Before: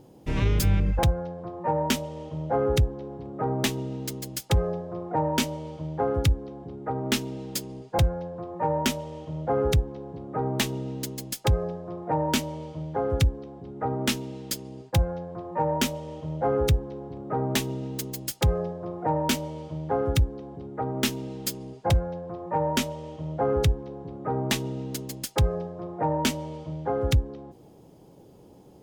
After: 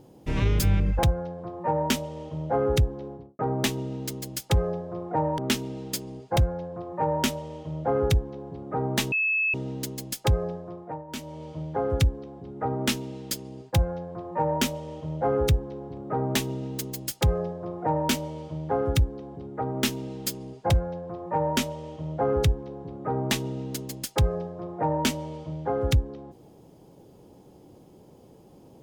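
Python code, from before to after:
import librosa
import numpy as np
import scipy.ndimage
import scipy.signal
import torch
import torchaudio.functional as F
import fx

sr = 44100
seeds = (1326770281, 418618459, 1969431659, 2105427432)

y = fx.studio_fade_out(x, sr, start_s=3.05, length_s=0.34)
y = fx.edit(y, sr, fx.cut(start_s=5.38, length_s=1.62),
    fx.insert_tone(at_s=10.74, length_s=0.42, hz=2600.0, db=-21.5),
    fx.fade_down_up(start_s=11.75, length_s=1.02, db=-17.0, fade_s=0.49), tone=tone)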